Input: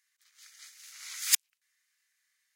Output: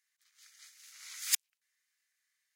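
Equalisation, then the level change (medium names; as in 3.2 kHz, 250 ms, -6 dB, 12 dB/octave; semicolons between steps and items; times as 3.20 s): high-pass 600 Hz; -5.0 dB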